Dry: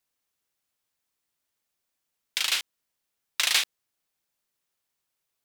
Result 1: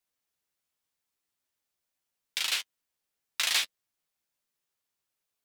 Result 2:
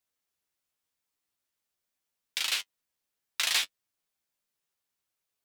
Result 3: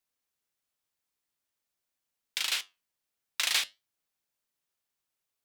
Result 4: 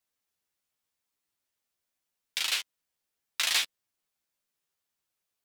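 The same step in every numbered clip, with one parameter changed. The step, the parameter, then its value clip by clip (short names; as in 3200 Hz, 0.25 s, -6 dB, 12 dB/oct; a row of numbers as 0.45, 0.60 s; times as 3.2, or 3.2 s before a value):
flange, regen: -19, +31, -75, +7%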